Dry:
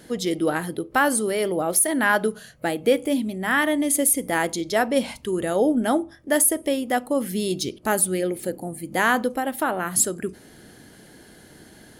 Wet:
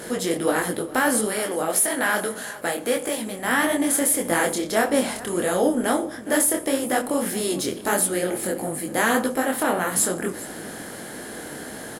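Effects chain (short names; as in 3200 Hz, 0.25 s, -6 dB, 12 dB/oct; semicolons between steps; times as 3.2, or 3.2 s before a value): per-bin compression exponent 0.6; 1.25–3.44 low shelf 440 Hz -6.5 dB; echo 0.411 s -18 dB; detuned doubles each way 56 cents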